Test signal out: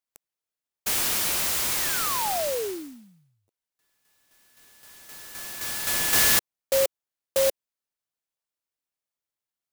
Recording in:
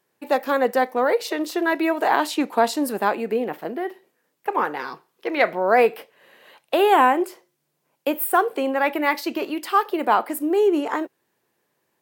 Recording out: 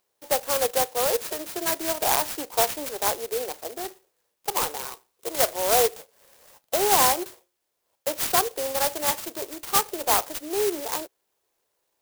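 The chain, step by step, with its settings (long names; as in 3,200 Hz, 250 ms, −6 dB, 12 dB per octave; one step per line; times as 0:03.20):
high-pass filter 420 Hz 24 dB per octave
high-shelf EQ 9,500 Hz +5.5 dB
converter with an unsteady clock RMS 0.15 ms
level −3 dB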